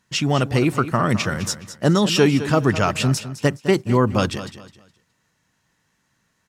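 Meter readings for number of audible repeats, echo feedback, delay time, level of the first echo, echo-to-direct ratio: 3, 29%, 209 ms, -13.0 dB, -12.5 dB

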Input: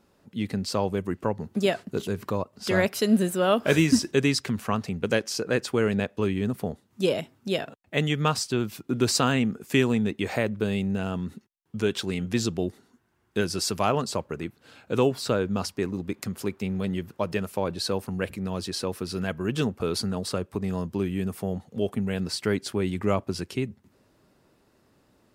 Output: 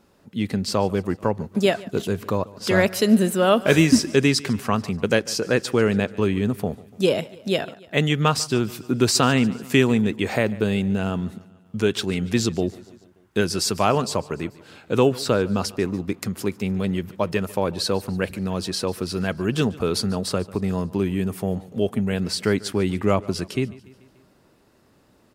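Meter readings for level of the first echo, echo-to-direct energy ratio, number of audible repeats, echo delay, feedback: -21.0 dB, -19.5 dB, 3, 145 ms, 57%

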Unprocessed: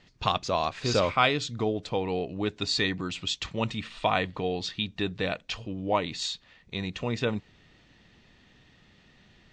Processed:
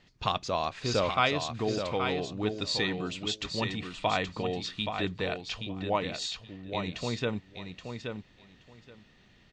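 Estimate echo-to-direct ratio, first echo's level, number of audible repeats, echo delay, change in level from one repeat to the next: -6.5 dB, -6.5 dB, 2, 825 ms, -16.0 dB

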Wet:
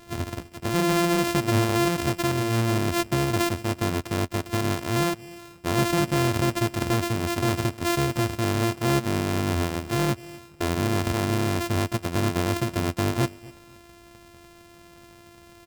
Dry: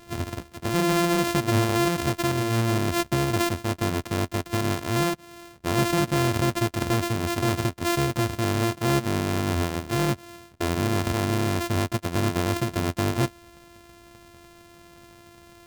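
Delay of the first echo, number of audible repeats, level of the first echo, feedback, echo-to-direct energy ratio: 250 ms, 2, -22.0 dB, 32%, -21.5 dB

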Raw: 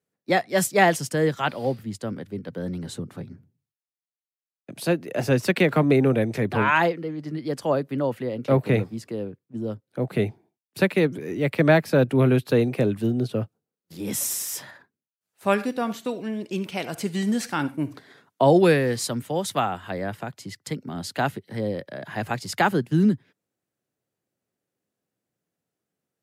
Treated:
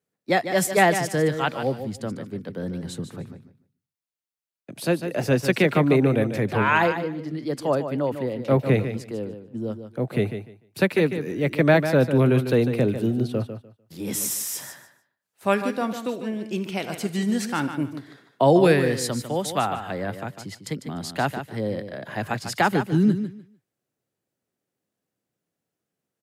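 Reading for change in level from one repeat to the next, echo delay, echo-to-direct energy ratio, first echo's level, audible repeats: -14.5 dB, 149 ms, -9.5 dB, -9.5 dB, 2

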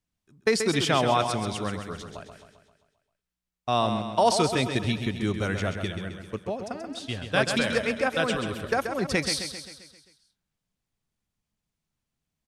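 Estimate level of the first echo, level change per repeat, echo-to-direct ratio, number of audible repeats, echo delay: -7.5 dB, -5.5 dB, -6.0 dB, 6, 132 ms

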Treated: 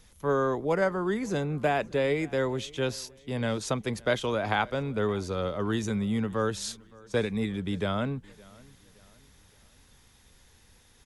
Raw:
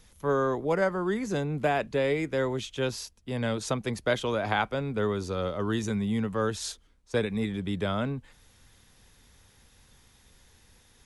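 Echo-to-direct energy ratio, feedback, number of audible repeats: -23.5 dB, 40%, 2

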